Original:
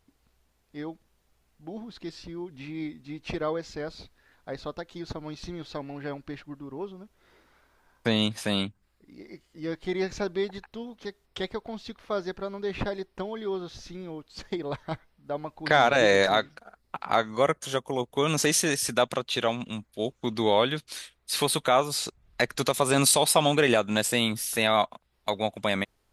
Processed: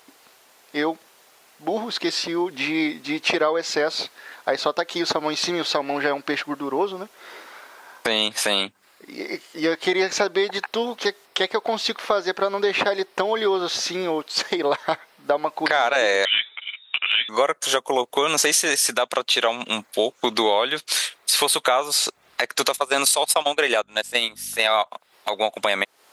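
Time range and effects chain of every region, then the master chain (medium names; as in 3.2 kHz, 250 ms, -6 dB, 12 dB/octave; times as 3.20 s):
16.25–17.29 s: frequency inversion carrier 3.7 kHz + three-phase chorus
22.75–24.85 s: gate -24 dBFS, range -21 dB + bass shelf 130 Hz -11 dB + mains buzz 50 Hz, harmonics 5, -45 dBFS -9 dB/octave
whole clip: high-pass 510 Hz 12 dB/octave; compression 6:1, threshold -39 dBFS; loudness maximiser +26.5 dB; trim -5 dB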